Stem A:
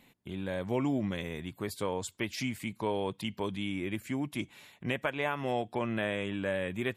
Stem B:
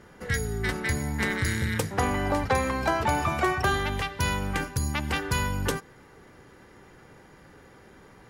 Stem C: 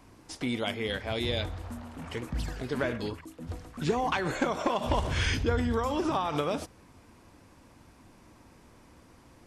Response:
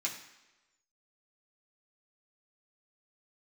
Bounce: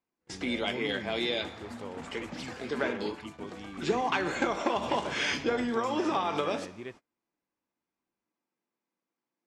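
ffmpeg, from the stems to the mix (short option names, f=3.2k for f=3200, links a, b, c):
-filter_complex "[0:a]equalizer=f=370:t=o:w=0.89:g=4.5,volume=-11.5dB[a];[1:a]acompressor=threshold=-33dB:ratio=6,volume=-15.5dB[b];[2:a]highpass=f=190:w=0.5412,highpass=f=190:w=1.3066,volume=-1dB,asplit=2[c][d];[d]volume=-8dB[e];[3:a]atrim=start_sample=2205[f];[e][f]afir=irnorm=-1:irlink=0[g];[a][b][c][g]amix=inputs=4:normalize=0,lowpass=6.4k,agate=range=-32dB:threshold=-47dB:ratio=16:detection=peak"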